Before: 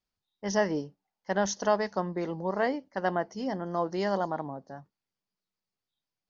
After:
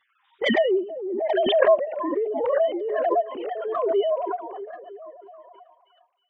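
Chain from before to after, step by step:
three sine waves on the formant tracks
low-pass that shuts in the quiet parts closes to 1,500 Hz, open at −26.5 dBFS
harmonic and percussive parts rebalanced percussive −16 dB
flanger swept by the level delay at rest 8.7 ms, full sweep at −28.5 dBFS
echo through a band-pass that steps 318 ms, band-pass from 210 Hz, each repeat 0.7 octaves, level −11 dB
background raised ahead of every attack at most 29 dB per second
level +8 dB

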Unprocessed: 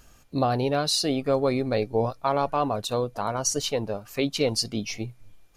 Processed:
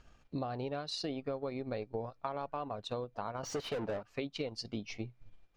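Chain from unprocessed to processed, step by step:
low-pass filter 3,900 Hz 12 dB per octave
0:03.43–0:04.03: mid-hump overdrive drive 29 dB, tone 1,400 Hz, clips at −15 dBFS
transient designer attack +1 dB, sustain −7 dB
downward compressor, threshold −29 dBFS, peak gain reduction 11 dB
level −5.5 dB

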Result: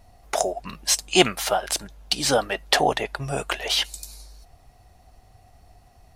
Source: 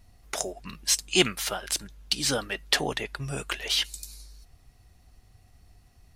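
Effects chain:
parametric band 710 Hz +11.5 dB 1.1 octaves
level +2.5 dB

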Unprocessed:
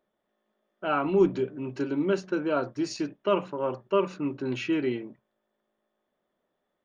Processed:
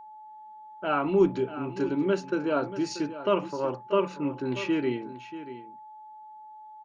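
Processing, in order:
single-tap delay 635 ms −13.5 dB
steady tone 860 Hz −44 dBFS

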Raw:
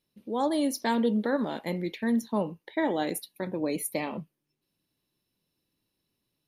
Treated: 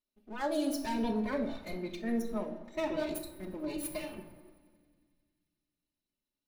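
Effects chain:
lower of the sound and its delayed copy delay 3.3 ms
feedback echo with a high-pass in the loop 89 ms, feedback 84%, high-pass 420 Hz, level −24 dB
rectangular room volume 1,800 cubic metres, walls mixed, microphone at 1.4 metres
noise reduction from a noise print of the clip's start 8 dB
level −5.5 dB

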